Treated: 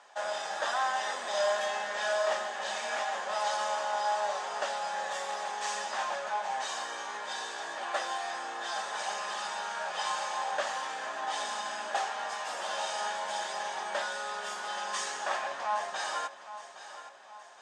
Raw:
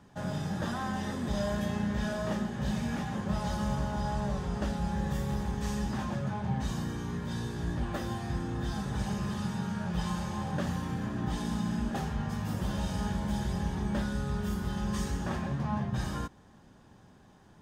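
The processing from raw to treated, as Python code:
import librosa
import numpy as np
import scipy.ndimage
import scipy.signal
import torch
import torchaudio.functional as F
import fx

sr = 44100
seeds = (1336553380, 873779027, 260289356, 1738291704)

p1 = scipy.signal.sosfilt(scipy.signal.ellip(3, 1.0, 80, [630.0, 8200.0], 'bandpass', fs=sr, output='sos'), x)
p2 = p1 + fx.echo_feedback(p1, sr, ms=817, feedback_pct=47, wet_db=-13.5, dry=0)
y = F.gain(torch.from_numpy(p2), 8.0).numpy()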